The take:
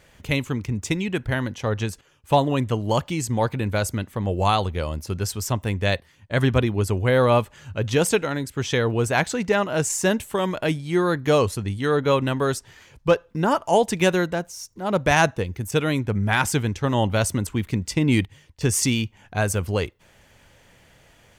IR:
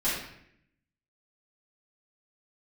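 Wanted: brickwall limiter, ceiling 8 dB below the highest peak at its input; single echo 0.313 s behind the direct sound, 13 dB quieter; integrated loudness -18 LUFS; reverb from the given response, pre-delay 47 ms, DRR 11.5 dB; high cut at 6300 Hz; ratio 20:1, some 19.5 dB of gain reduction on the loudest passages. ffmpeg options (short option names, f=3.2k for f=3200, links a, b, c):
-filter_complex "[0:a]lowpass=6.3k,acompressor=threshold=-32dB:ratio=20,alimiter=level_in=4.5dB:limit=-24dB:level=0:latency=1,volume=-4.5dB,aecho=1:1:313:0.224,asplit=2[a][b];[1:a]atrim=start_sample=2205,adelay=47[c];[b][c]afir=irnorm=-1:irlink=0,volume=-21.5dB[d];[a][d]amix=inputs=2:normalize=0,volume=21.5dB"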